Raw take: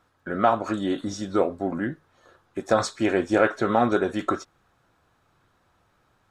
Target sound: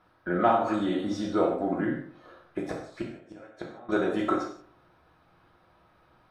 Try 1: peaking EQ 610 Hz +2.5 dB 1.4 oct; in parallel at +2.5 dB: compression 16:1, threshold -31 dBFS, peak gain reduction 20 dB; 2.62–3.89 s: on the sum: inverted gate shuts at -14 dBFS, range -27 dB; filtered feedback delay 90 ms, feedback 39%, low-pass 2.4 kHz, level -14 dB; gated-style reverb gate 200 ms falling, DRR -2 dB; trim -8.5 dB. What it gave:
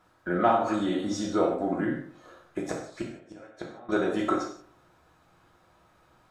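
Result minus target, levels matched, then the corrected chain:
8 kHz band +8.0 dB
peaking EQ 610 Hz +2.5 dB 1.4 oct; in parallel at +2.5 dB: compression 16:1, threshold -31 dBFS, peak gain reduction 20 dB + low-pass 7.2 kHz 24 dB/octave; 2.62–3.89 s: on the sum: inverted gate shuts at -14 dBFS, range -27 dB; filtered feedback delay 90 ms, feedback 39%, low-pass 2.4 kHz, level -14 dB; gated-style reverb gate 200 ms falling, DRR -2 dB; trim -8.5 dB

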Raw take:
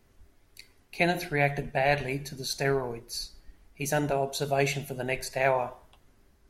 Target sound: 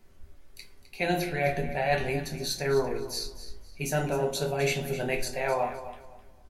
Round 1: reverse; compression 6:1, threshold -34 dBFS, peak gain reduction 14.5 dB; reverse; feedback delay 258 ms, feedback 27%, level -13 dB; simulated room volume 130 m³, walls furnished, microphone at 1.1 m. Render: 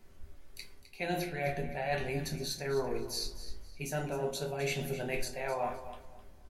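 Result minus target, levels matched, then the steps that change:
compression: peak gain reduction +7.5 dB
change: compression 6:1, threshold -25 dBFS, peak gain reduction 7 dB

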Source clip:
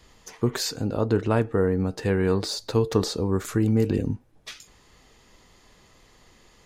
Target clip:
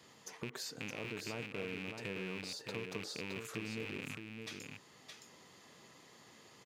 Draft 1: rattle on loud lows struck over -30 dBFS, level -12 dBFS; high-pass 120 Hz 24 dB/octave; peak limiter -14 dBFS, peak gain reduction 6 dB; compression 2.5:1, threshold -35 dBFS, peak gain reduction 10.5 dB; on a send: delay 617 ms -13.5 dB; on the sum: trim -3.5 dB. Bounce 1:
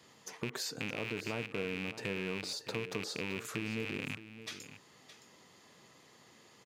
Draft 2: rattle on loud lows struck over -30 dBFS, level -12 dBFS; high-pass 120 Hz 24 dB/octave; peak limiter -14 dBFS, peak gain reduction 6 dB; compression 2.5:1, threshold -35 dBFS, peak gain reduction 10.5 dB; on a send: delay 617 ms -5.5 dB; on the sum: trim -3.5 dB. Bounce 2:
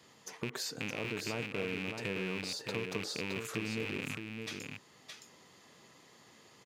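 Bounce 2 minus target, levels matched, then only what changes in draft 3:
compression: peak gain reduction -5 dB
change: compression 2.5:1, threshold -43.5 dBFS, peak gain reduction 15.5 dB

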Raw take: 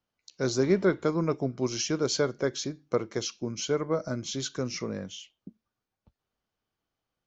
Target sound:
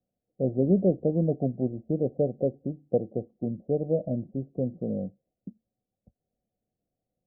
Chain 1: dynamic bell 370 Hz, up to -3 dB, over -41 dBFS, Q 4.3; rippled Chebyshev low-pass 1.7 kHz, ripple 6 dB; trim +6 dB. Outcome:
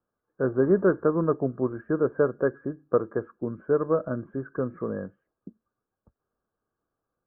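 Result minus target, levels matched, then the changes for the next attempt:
1 kHz band +9.0 dB
change: rippled Chebyshev low-pass 760 Hz, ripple 6 dB

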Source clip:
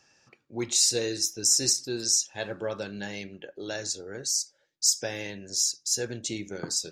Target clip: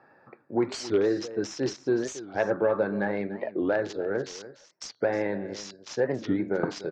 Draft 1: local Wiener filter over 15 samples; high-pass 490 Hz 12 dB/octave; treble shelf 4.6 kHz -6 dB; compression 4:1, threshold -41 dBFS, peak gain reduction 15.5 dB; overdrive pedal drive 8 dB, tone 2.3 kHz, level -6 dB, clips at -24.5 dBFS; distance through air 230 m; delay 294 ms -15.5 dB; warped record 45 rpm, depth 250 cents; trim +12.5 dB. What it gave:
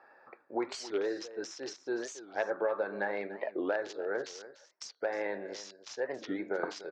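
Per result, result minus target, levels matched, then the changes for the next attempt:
125 Hz band -12.5 dB; compression: peak gain reduction +8 dB
change: high-pass 130 Hz 12 dB/octave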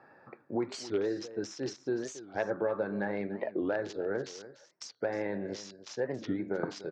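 compression: peak gain reduction +8 dB
change: compression 4:1, threshold -30.5 dBFS, peak gain reduction 7.5 dB

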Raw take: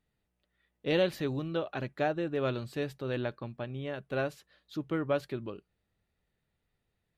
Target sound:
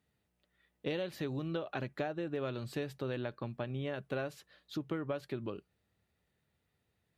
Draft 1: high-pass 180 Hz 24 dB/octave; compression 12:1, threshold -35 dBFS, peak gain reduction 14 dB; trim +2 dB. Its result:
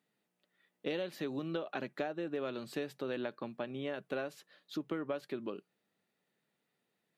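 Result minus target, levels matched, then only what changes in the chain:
125 Hz band -8.0 dB
change: high-pass 60 Hz 24 dB/octave

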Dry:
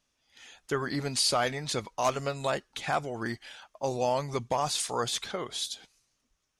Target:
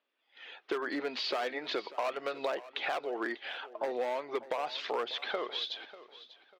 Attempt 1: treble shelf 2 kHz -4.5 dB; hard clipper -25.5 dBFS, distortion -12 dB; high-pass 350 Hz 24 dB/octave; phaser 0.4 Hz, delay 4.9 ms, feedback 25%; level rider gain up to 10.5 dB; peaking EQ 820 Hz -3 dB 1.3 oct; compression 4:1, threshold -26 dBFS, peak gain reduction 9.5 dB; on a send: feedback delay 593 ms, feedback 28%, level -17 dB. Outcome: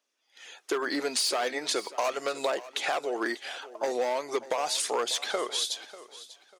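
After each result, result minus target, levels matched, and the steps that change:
8 kHz band +19.5 dB; compression: peak gain reduction -5 dB
add first: inverse Chebyshev low-pass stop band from 8.3 kHz, stop band 50 dB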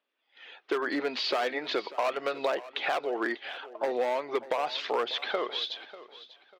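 compression: peak gain reduction -5 dB
change: compression 4:1, threshold -32.5 dBFS, peak gain reduction 14 dB

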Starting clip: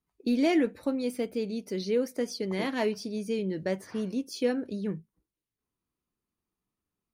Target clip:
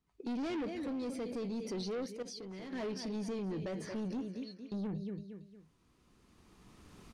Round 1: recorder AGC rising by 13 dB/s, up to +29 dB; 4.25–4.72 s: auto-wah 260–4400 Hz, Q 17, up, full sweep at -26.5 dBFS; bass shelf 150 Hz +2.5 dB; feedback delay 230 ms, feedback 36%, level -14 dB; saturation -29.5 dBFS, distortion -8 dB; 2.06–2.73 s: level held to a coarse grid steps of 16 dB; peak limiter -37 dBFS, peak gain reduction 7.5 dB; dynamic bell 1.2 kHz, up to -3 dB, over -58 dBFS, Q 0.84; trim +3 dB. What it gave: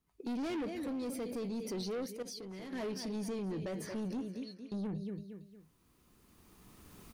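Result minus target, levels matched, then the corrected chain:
8 kHz band +3.0 dB
recorder AGC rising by 13 dB/s, up to +29 dB; 4.25–4.72 s: auto-wah 260–4400 Hz, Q 17, up, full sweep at -26.5 dBFS; bass shelf 150 Hz +2.5 dB; feedback delay 230 ms, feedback 36%, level -14 dB; saturation -29.5 dBFS, distortion -8 dB; 2.06–2.73 s: level held to a coarse grid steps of 16 dB; peak limiter -37 dBFS, peak gain reduction 7.5 dB; dynamic bell 1.2 kHz, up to -3 dB, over -58 dBFS, Q 0.84; low-pass 7 kHz 12 dB/octave; trim +3 dB

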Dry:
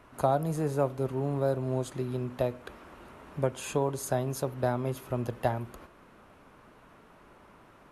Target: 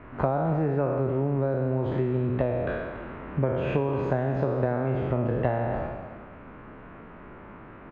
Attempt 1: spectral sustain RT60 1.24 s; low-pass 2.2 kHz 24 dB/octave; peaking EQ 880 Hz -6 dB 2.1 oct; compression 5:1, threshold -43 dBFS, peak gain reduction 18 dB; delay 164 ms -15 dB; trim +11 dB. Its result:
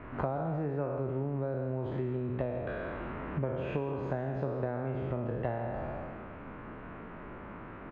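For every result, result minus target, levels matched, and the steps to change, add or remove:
echo 120 ms early; compression: peak gain reduction +8 dB
change: delay 284 ms -15 dB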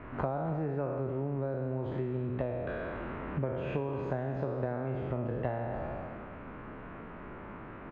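compression: peak gain reduction +8 dB
change: compression 5:1, threshold -33 dBFS, peak gain reduction 10 dB

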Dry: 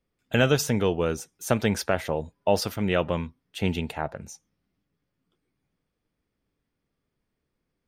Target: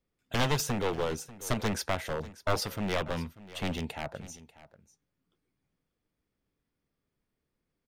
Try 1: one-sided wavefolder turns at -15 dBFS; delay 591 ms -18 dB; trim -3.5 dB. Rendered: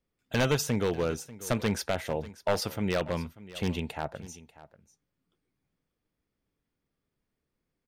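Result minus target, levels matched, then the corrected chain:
one-sided wavefolder: distortion -11 dB
one-sided wavefolder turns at -21.5 dBFS; delay 591 ms -18 dB; trim -3.5 dB

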